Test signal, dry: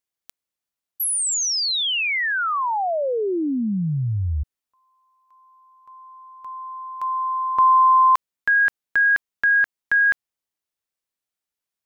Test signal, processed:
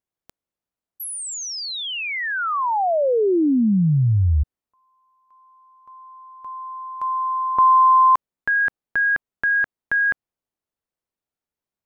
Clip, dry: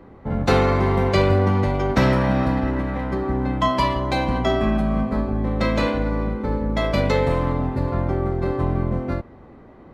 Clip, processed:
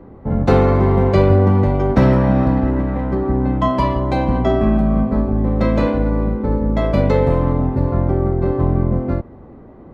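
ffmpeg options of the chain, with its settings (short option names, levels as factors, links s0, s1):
-af "tiltshelf=f=1400:g=7,volume=0.891"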